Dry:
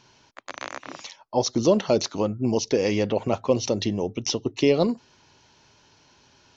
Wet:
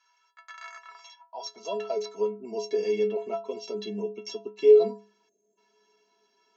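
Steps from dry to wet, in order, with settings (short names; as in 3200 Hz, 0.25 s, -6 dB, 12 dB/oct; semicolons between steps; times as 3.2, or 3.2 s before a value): metallic resonator 200 Hz, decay 0.41 s, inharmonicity 0.03; spectral gain 5.29–5.58, 670–6300 Hz -26 dB; high-pass sweep 1300 Hz -> 340 Hz, 0.69–2.44; gain +3 dB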